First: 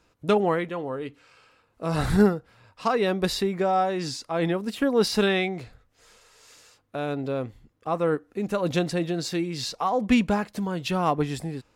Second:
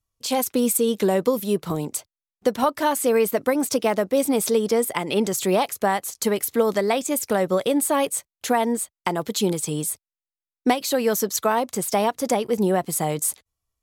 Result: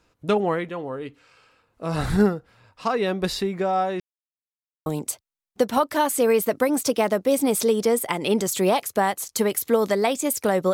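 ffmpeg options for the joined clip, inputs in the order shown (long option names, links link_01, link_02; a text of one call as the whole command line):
ffmpeg -i cue0.wav -i cue1.wav -filter_complex "[0:a]apad=whole_dur=10.73,atrim=end=10.73,asplit=2[link_01][link_02];[link_01]atrim=end=4,asetpts=PTS-STARTPTS,afade=type=out:start_time=3.996:duration=0.004:curve=hsin[link_03];[link_02]atrim=start=4:end=4.86,asetpts=PTS-STARTPTS,volume=0[link_04];[1:a]atrim=start=1.72:end=7.59,asetpts=PTS-STARTPTS,afade=type=in:duration=0.004:curve=hsin[link_05];[link_03][link_04][link_05]concat=n=3:v=0:a=1" out.wav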